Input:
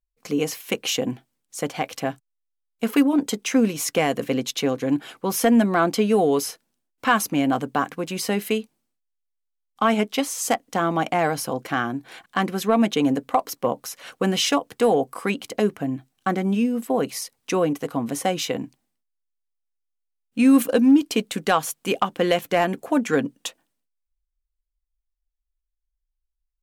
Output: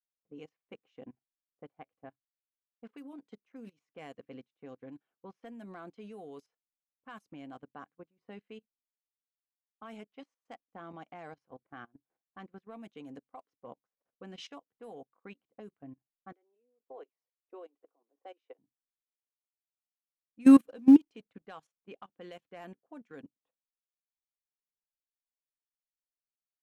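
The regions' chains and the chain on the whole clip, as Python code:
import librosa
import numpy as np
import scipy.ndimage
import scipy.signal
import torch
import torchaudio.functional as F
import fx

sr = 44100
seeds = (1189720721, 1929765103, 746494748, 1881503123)

y = fx.chain(x, sr, fx.dynamic_eq(hz=1600.0, q=0.89, threshold_db=-41.0, ratio=4.0, max_db=-4),
    fx.steep_highpass(hz=330.0, slope=48), at=(16.32, 18.59))
y = fx.chain(y, sr, fx.law_mismatch(coded='mu'),
    fx.high_shelf(hz=6500.0, db=-9.0), at=(20.48, 21.46))
y = fx.env_lowpass(y, sr, base_hz=430.0, full_db=-14.5)
y = fx.level_steps(y, sr, step_db=13)
y = fx.upward_expand(y, sr, threshold_db=-37.0, expansion=2.5)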